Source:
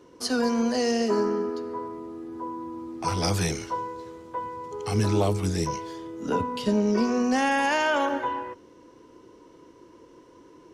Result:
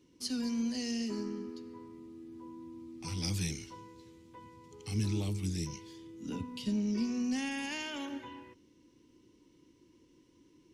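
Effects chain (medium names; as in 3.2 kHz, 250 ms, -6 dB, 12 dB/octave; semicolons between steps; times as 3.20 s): high-order bell 820 Hz -14 dB 2.3 oct; band-stop 670 Hz, Q 12; trim -7.5 dB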